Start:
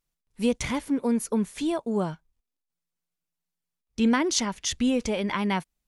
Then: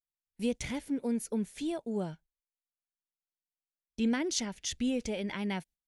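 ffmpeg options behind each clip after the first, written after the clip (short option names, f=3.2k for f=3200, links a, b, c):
-af "equalizer=f=1.1k:t=o:w=0.51:g=-11.5,agate=range=-18dB:threshold=-47dB:ratio=16:detection=peak,volume=-7dB"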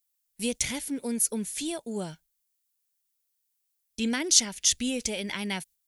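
-af "crystalizer=i=5.5:c=0"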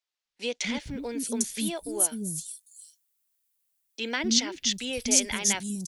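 -filter_complex "[0:a]acrossover=split=310|5500[a][b][c];[a]adelay=250[d];[c]adelay=800[e];[d][b][e]amix=inputs=3:normalize=0,volume=2.5dB"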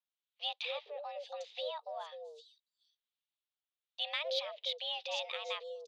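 -filter_complex "[0:a]highpass=f=150:t=q:w=0.5412,highpass=f=150:t=q:w=1.307,lowpass=f=3.5k:t=q:w=0.5176,lowpass=f=3.5k:t=q:w=0.7071,lowpass=f=3.5k:t=q:w=1.932,afreqshift=300,aexciter=amount=2.1:drive=7.1:freq=3k,acrossover=split=1400[a][b];[a]aeval=exprs='val(0)*(1-0.5/2+0.5/2*cos(2*PI*1.1*n/s))':c=same[c];[b]aeval=exprs='val(0)*(1-0.5/2-0.5/2*cos(2*PI*1.1*n/s))':c=same[d];[c][d]amix=inputs=2:normalize=0,volume=-7.5dB"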